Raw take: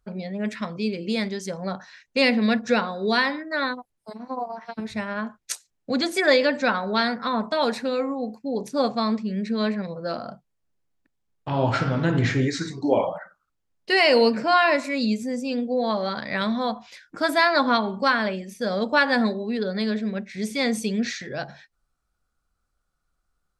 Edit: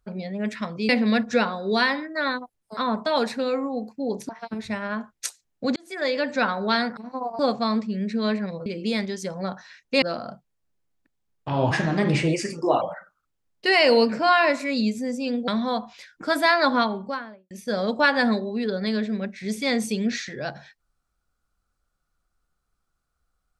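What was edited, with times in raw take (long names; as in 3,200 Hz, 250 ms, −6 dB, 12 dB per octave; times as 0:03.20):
0:00.89–0:02.25: move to 0:10.02
0:04.13–0:04.55: swap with 0:07.23–0:08.75
0:06.02–0:06.73: fade in
0:11.71–0:13.06: play speed 122%
0:15.72–0:16.41: remove
0:17.63–0:18.44: fade out and dull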